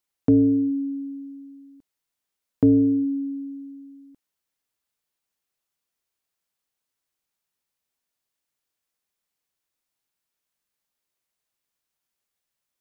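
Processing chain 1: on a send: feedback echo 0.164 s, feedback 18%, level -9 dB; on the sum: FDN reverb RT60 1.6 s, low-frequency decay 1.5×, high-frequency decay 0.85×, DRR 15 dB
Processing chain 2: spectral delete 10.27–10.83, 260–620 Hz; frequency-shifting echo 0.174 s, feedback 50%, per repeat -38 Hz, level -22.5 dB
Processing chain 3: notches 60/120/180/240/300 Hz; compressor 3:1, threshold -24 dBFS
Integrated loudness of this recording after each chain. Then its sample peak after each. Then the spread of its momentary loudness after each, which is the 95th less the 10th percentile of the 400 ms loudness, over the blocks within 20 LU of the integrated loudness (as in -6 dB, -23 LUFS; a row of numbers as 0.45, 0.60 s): -18.5, -22.0, -28.0 LUFS; -8.0, -10.0, -11.5 dBFS; 17, 20, 18 LU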